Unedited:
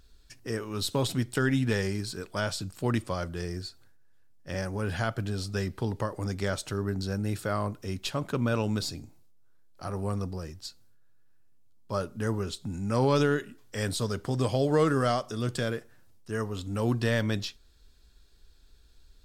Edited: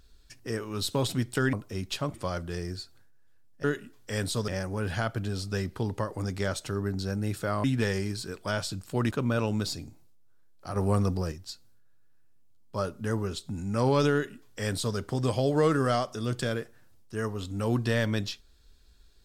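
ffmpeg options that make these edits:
-filter_complex "[0:a]asplit=9[s0][s1][s2][s3][s4][s5][s6][s7][s8];[s0]atrim=end=1.532[s9];[s1]atrim=start=7.658:end=8.272[s10];[s2]atrim=start=2.998:end=4.502[s11];[s3]atrim=start=13.288:end=14.132[s12];[s4]atrim=start=4.498:end=7.662[s13];[s5]atrim=start=1.528:end=3.002[s14];[s6]atrim=start=8.268:end=9.922[s15];[s7]atrim=start=9.918:end=10.482,asetpts=PTS-STARTPTS,volume=2[s16];[s8]atrim=start=10.478[s17];[s9][s10]acrossfade=d=0.004:c1=hsin:c2=hsin[s18];[s18][s11]acrossfade=d=0.004:c1=hsin:c2=hsin[s19];[s19][s12]acrossfade=d=0.004:c1=hsin:c2=hsin[s20];[s20][s13]acrossfade=d=0.004:c1=hsin:c2=hsin[s21];[s21][s14]acrossfade=d=0.004:c1=hsin:c2=hsin[s22];[s22][s15]acrossfade=d=0.004:c1=hsin:c2=hsin[s23];[s23][s16]acrossfade=d=0.004:c1=hsin:c2=hsin[s24];[s24][s17]acrossfade=d=0.004:c1=hsin:c2=hsin"

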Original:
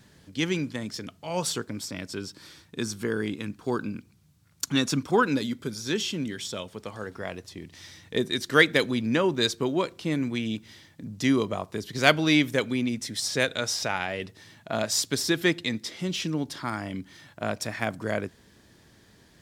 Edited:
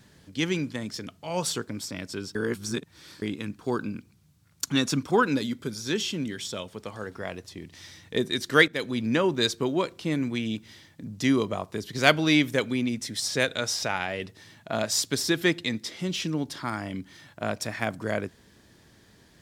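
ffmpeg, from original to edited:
-filter_complex "[0:a]asplit=4[s0][s1][s2][s3];[s0]atrim=end=2.352[s4];[s1]atrim=start=2.348:end=3.222,asetpts=PTS-STARTPTS,areverse[s5];[s2]atrim=start=3.218:end=8.68,asetpts=PTS-STARTPTS,afade=t=out:st=5.458:d=0.004:c=hsin:silence=0.188365[s6];[s3]atrim=start=8.68,asetpts=PTS-STARTPTS,afade=t=in:d=0.36:silence=0.188365[s7];[s4][s5]acrossfade=d=0.004:c1=hsin:c2=hsin[s8];[s6][s7]concat=n=2:v=0:a=1[s9];[s8][s9]acrossfade=d=0.004:c1=hsin:c2=hsin"

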